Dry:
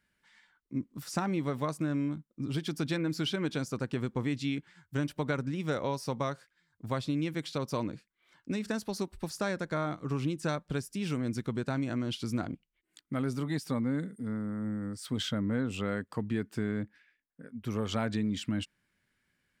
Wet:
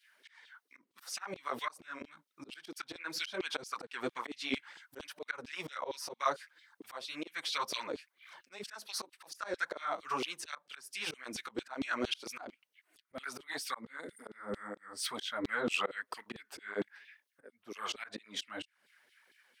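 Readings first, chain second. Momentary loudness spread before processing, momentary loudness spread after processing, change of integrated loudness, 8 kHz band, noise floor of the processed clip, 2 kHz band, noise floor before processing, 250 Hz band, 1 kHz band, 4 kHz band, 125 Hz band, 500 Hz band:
6 LU, 16 LU, -5.5 dB, +1.0 dB, -82 dBFS, +1.5 dB, -80 dBFS, -13.5 dB, 0.0 dB, +0.5 dB, -24.5 dB, -6.0 dB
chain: band-stop 7.3 kHz, Q 10; in parallel at -1 dB: compression, threshold -45 dBFS, peak gain reduction 18 dB; on the sum: LFO high-pass saw down 4.4 Hz 360–3700 Hz; slow attack 260 ms; cancelling through-zero flanger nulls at 2 Hz, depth 7.3 ms; trim +6 dB

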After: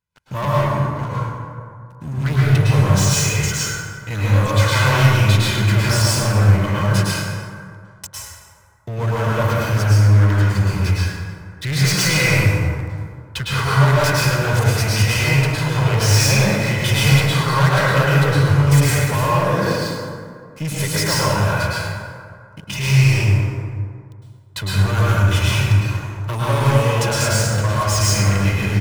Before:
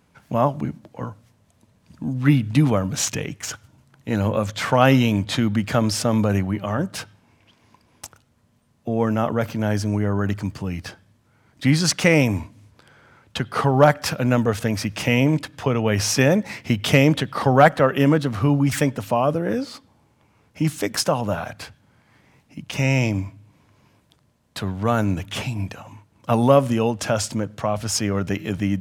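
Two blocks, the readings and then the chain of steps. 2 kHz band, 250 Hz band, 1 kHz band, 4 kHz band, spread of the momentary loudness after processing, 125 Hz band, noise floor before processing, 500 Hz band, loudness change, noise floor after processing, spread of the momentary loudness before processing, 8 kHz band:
+6.5 dB, -2.0 dB, +2.5 dB, +7.0 dB, 15 LU, +8.5 dB, -61 dBFS, -1.0 dB, +4.0 dB, -42 dBFS, 15 LU, +6.5 dB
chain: peaking EQ 460 Hz -12 dB 1.6 oct; comb 2 ms, depth 73%; waveshaping leveller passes 5; plate-style reverb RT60 2.1 s, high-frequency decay 0.45×, pre-delay 95 ms, DRR -7.5 dB; trim -14.5 dB

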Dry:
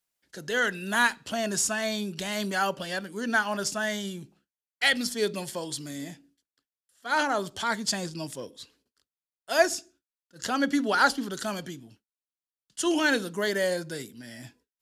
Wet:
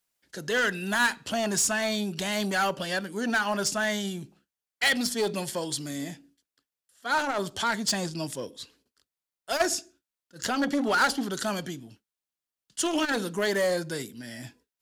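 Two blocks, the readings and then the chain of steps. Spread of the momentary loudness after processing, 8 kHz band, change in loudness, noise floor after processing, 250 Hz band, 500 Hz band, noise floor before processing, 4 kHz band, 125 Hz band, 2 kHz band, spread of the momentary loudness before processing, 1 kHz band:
15 LU, +2.0 dB, 0.0 dB, under -85 dBFS, +0.5 dB, 0.0 dB, under -85 dBFS, +1.0 dB, +2.5 dB, -0.5 dB, 18 LU, -0.5 dB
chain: in parallel at -3 dB: wavefolder -23 dBFS; on the sum: transformer saturation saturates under 1 kHz; trim -1.5 dB

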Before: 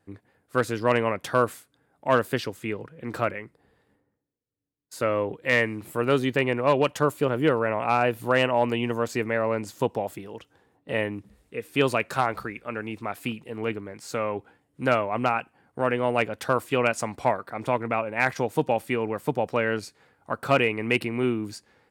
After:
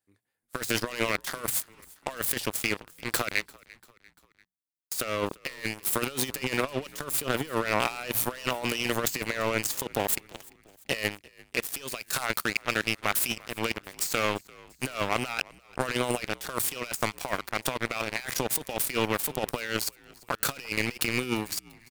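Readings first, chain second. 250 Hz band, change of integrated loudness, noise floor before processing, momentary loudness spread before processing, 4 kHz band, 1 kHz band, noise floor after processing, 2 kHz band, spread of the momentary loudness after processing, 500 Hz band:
-6.0 dB, -3.5 dB, -71 dBFS, 11 LU, +4.0 dB, -6.5 dB, -68 dBFS, -2.0 dB, 7 LU, -8.5 dB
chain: tracing distortion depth 0.11 ms; pre-emphasis filter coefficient 0.9; hum notches 60/120 Hz; dynamic bell 880 Hz, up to -4 dB, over -52 dBFS, Q 1.1; waveshaping leveller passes 5; compressor with a negative ratio -29 dBFS, ratio -0.5; on a send: frequency-shifting echo 344 ms, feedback 53%, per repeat -62 Hz, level -23.5 dB

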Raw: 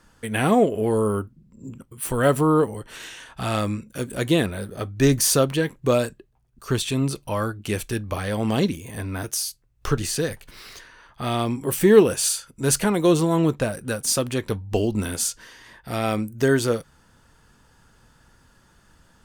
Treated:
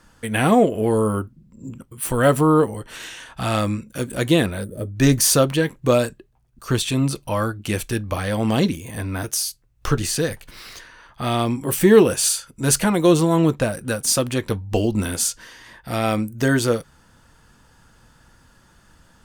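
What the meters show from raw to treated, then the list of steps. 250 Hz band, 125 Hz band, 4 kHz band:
+3.0 dB, +3.0 dB, +3.0 dB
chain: time-frequency box 4.64–4.95 s, 630–6900 Hz -15 dB; band-stop 410 Hz, Q 12; trim +3 dB

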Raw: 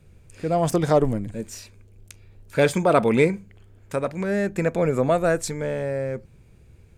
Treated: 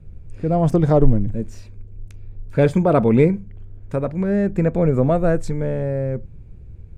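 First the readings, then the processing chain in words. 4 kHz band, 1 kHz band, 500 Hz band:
no reading, -0.5 dB, +2.0 dB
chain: tilt EQ -3.5 dB/octave; trim -1.5 dB

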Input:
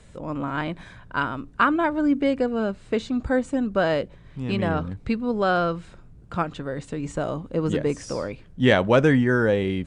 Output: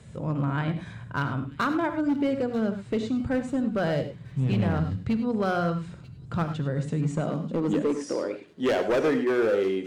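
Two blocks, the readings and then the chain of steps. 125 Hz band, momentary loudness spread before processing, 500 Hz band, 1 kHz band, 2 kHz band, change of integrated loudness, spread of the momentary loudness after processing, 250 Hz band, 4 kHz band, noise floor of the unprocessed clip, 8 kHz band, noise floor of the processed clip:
0.0 dB, 12 LU, -3.0 dB, -5.5 dB, -7.0 dB, -3.0 dB, 7 LU, -2.5 dB, -6.0 dB, -48 dBFS, no reading, -45 dBFS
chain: bass shelf 120 Hz +11 dB; hum notches 60/120/180/240/300 Hz; in parallel at +2 dB: compression 6:1, threshold -29 dBFS, peak gain reduction 16.5 dB; on the sum: high-pass sweep 120 Hz -> 370 Hz, 6.68–8.32 s; hard clipper -11.5 dBFS, distortion -13 dB; feedback echo behind a high-pass 938 ms, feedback 36%, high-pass 3.5 kHz, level -12 dB; gated-style reverb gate 120 ms rising, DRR 8.5 dB; trim -8.5 dB

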